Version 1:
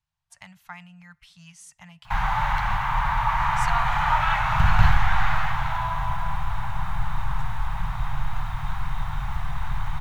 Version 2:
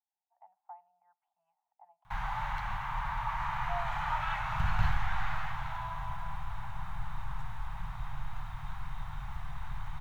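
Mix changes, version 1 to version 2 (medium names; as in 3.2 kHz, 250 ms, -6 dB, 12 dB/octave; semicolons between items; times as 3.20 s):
speech: add Butterworth band-pass 780 Hz, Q 4.1; background -11.5 dB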